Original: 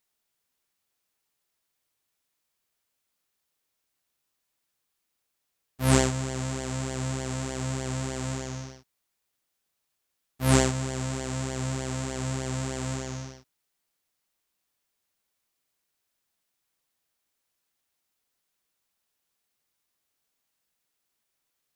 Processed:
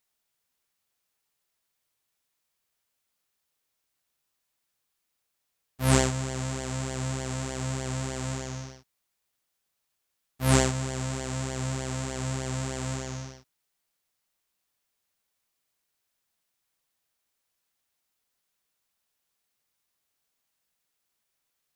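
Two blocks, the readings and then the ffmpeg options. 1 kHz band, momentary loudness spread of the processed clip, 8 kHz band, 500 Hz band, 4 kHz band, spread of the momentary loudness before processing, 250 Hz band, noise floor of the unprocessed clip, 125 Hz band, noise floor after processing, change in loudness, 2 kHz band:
0.0 dB, 12 LU, 0.0 dB, −1.0 dB, 0.0 dB, 12 LU, −2.0 dB, −80 dBFS, −0.5 dB, −80 dBFS, −0.5 dB, 0.0 dB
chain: -af "equalizer=frequency=310:width=1.5:gain=-2.5"

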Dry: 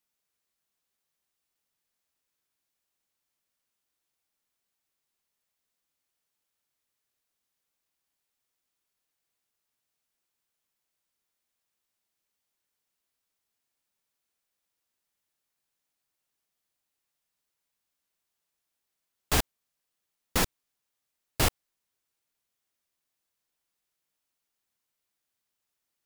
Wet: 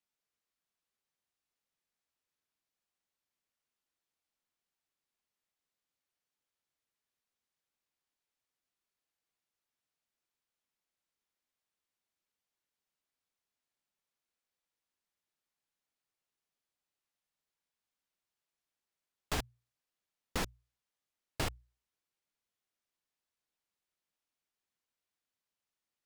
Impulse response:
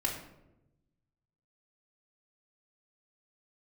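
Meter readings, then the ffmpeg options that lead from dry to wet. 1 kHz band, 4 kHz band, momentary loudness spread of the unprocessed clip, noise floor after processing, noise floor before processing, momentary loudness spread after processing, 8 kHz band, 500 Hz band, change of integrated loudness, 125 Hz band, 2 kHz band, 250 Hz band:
−8.5 dB, −10.0 dB, 9 LU, below −85 dBFS, −84 dBFS, 9 LU, −13.0 dB, −8.5 dB, −10.5 dB, −9.5 dB, −9.0 dB, −8.5 dB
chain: -af "highshelf=frequency=8900:gain=-10.5,acompressor=threshold=-25dB:ratio=6,bandreject=frequency=60:width_type=h:width=6,bandreject=frequency=120:width_type=h:width=6,volume=-5dB"

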